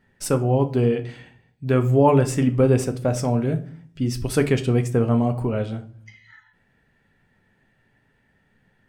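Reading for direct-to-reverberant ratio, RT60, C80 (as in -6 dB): 7.0 dB, 0.50 s, 19.5 dB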